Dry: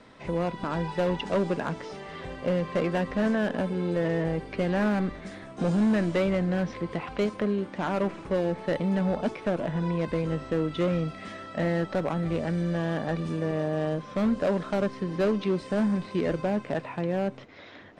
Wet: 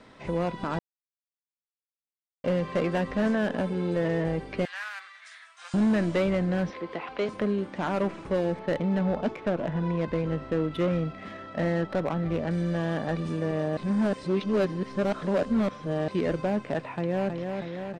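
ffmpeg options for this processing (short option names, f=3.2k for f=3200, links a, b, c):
-filter_complex "[0:a]asettb=1/sr,asplit=3[a][b][c];[a]atrim=end=4.654[d];[b]atrim=start=4.65:end=5.74,asetpts=PTS-STARTPTS,afade=t=in:d=0.004:c=qsin,afade=t=out:st=1.086:d=0.004:c=qsin,highpass=f=1.3k:w=0.5412,highpass=f=1.3k:w=1.3066[e];[c]atrim=start=5.736[f];[d][e]acrossfade=d=0.004:c1=hsin:c2=qsin[g];[g][f]acrossfade=d=0.004:c1=qsin:c2=hsin,asettb=1/sr,asplit=3[h][i][j];[h]atrim=end=6.704[k];[i]atrim=start=6.7:end=7.29,asetpts=PTS-STARTPTS,afade=t=in:d=0.004:c=qsin,afade=t=out:st=0.586:d=0.004:c=qsin,acrossover=split=260 5500:gain=0.158 1 0.2[l][m][n];[l][m][n]amix=inputs=3:normalize=0[o];[j]atrim=start=7.286[p];[k][o]acrossfade=d=0.004:c1=hsin:c2=qsin[q];[q][p]acrossfade=d=0.004:c1=qsin:c2=hsin,asettb=1/sr,asplit=3[r][s][t];[r]atrim=end=8.594[u];[s]atrim=start=8.59:end=12.51,asetpts=PTS-STARTPTS,afade=t=in:d=0.004:c=qsin,afade=t=out:st=3.916:d=0.004:c=qsin,adynamicsmooth=sensitivity=6.5:basefreq=2.9k[v];[t]atrim=start=12.506[w];[u][v]acrossfade=d=0.004:c1=hsin:c2=qsin[x];[x][w]acrossfade=d=0.004:c1=qsin:c2=hsin,asplit=2[y][z];[z]afade=t=in:st=16.82:d=0.01,afade=t=out:st=17.36:d=0.01,aecho=0:1:320|640|960|1280|1600|1920|2240|2560|2880|3200|3520|3840:0.562341|0.393639|0.275547|0.192883|0.135018|0.0945127|0.0661589|0.0463112|0.0324179|0.0226925|0.0158848|0.0111193[aa];[y][aa]amix=inputs=2:normalize=0,asplit=5[ab][ac][ad][ae][af];[ab]atrim=end=0.79,asetpts=PTS-STARTPTS,afade=t=out:st=0.786:d=0.004:c=hsin[ag];[ac]atrim=start=0.79:end=2.44,asetpts=PTS-STARTPTS,volume=0[ah];[ad]atrim=start=2.44:end=13.772,asetpts=PTS-STARTPTS,afade=t=in:d=0.004:c=hsin[ai];[ae]atrim=start=13.768:end=16.082,asetpts=PTS-STARTPTS,areverse[aj];[af]atrim=start=16.078[ak];[ag][ah][ai]concat=n=3:v=0:a=1[al];[al][aj]acrossfade=d=0.004:c1=hsin:c2=hsin[am];[am][ak]acrossfade=d=0.004:c1=hsin:c2=hsin"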